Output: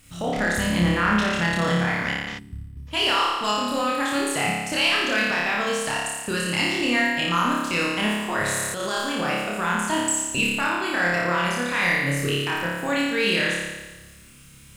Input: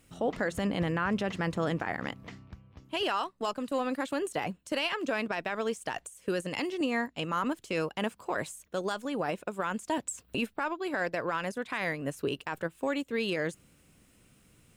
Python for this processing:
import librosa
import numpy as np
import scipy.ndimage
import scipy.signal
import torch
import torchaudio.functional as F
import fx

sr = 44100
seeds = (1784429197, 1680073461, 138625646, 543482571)

p1 = fx.peak_eq(x, sr, hz=450.0, db=-11.5, octaves=2.4)
p2 = fx.room_flutter(p1, sr, wall_m=4.9, rt60_s=1.2)
p3 = fx.transient(p2, sr, attack_db=-9, sustain_db=11, at=(8.42, 8.97))
p4 = 10.0 ** (-27.0 / 20.0) * np.tanh(p3 / 10.0 ** (-27.0 / 20.0))
p5 = p3 + F.gain(torch.from_numpy(p4), -4.5).numpy()
p6 = fx.spec_box(p5, sr, start_s=2.39, length_s=0.48, low_hz=420.0, high_hz=7700.0, gain_db=-20)
y = F.gain(torch.from_numpy(p6), 6.5).numpy()